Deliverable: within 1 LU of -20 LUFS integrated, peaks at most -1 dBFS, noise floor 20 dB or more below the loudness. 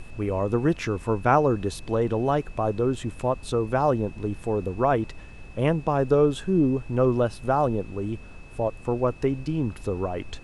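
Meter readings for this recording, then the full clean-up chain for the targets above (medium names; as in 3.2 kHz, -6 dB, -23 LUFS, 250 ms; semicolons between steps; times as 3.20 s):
steady tone 2.6 kHz; tone level -51 dBFS; noise floor -43 dBFS; noise floor target -45 dBFS; loudness -25.0 LUFS; peak level -7.0 dBFS; loudness target -20.0 LUFS
-> band-stop 2.6 kHz, Q 30; noise print and reduce 6 dB; trim +5 dB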